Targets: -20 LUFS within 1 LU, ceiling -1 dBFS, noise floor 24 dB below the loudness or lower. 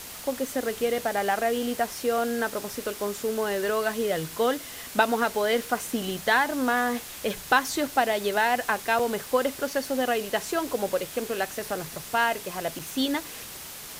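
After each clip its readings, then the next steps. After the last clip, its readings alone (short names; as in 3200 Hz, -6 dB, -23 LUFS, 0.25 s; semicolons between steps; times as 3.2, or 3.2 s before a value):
dropouts 2; longest dropout 4.7 ms; noise floor -41 dBFS; noise floor target -51 dBFS; loudness -27.0 LUFS; peak -6.5 dBFS; loudness target -20.0 LUFS
-> interpolate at 8.99/12.79, 4.7 ms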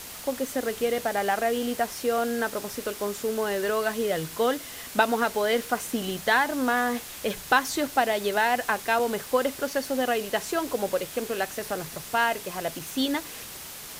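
dropouts 0; noise floor -41 dBFS; noise floor target -51 dBFS
-> denoiser 10 dB, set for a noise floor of -41 dBFS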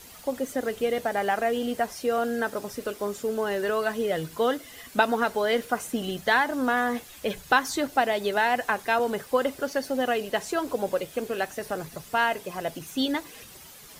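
noise floor -47 dBFS; noise floor target -51 dBFS
-> denoiser 6 dB, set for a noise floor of -47 dBFS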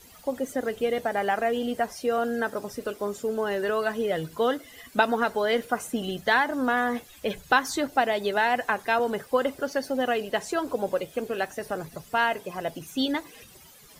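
noise floor -51 dBFS; loudness -27.0 LUFS; peak -6.5 dBFS; loudness target -20.0 LUFS
-> gain +7 dB; limiter -1 dBFS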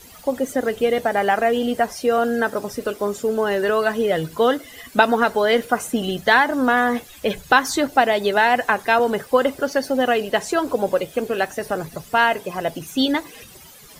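loudness -20.0 LUFS; peak -1.0 dBFS; noise floor -44 dBFS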